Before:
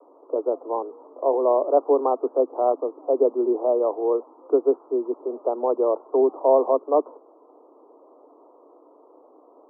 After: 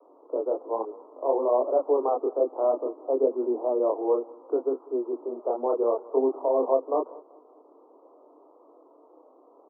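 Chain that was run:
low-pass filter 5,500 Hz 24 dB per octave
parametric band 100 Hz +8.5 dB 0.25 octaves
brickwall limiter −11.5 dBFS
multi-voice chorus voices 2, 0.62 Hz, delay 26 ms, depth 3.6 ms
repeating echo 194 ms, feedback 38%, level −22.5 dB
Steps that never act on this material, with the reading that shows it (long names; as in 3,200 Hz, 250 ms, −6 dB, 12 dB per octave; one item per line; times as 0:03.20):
low-pass filter 5,500 Hz: nothing at its input above 1,200 Hz
parametric band 100 Hz: nothing at its input below 230 Hz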